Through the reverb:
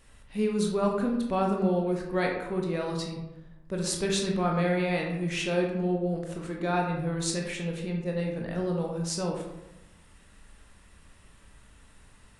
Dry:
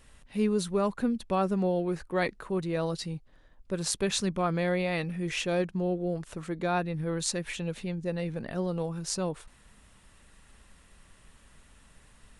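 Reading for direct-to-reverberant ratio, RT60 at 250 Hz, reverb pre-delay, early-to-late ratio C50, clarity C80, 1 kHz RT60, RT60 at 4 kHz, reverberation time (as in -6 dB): 0.0 dB, 1.1 s, 19 ms, 4.0 dB, 7.0 dB, 0.90 s, 0.50 s, 0.95 s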